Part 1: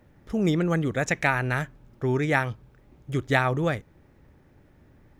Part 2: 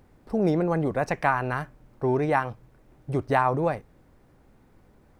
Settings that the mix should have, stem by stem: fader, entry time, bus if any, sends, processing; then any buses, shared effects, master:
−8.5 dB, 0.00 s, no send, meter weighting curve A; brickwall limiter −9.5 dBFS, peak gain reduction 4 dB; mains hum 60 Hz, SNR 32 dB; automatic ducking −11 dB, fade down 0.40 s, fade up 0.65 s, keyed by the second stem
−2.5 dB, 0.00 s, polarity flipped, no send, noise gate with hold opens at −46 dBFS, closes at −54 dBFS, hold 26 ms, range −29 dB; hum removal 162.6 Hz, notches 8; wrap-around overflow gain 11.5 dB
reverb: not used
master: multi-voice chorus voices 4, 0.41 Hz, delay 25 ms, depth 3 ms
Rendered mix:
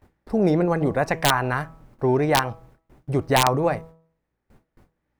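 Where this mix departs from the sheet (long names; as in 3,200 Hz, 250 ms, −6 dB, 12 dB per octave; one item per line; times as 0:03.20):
stem 2 −2.5 dB → +4.0 dB
master: missing multi-voice chorus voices 4, 0.41 Hz, delay 25 ms, depth 3 ms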